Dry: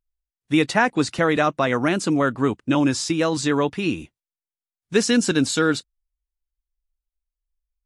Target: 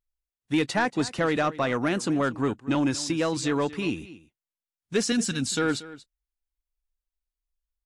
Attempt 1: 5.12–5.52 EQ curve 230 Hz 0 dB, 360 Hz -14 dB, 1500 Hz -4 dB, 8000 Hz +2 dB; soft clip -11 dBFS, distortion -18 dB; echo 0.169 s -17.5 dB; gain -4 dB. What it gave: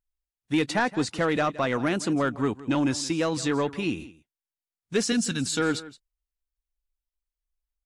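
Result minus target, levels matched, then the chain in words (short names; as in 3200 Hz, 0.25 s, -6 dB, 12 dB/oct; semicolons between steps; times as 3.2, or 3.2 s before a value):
echo 64 ms early
5.12–5.52 EQ curve 230 Hz 0 dB, 360 Hz -14 dB, 1500 Hz -4 dB, 8000 Hz +2 dB; soft clip -11 dBFS, distortion -18 dB; echo 0.233 s -17.5 dB; gain -4 dB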